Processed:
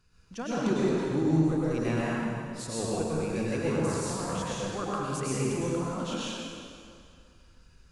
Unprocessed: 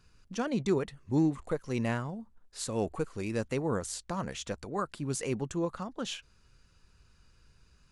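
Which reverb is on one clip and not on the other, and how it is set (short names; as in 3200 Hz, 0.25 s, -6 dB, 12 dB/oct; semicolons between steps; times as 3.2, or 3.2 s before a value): plate-style reverb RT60 2.3 s, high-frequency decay 0.85×, pre-delay 90 ms, DRR -7.5 dB; gain -4.5 dB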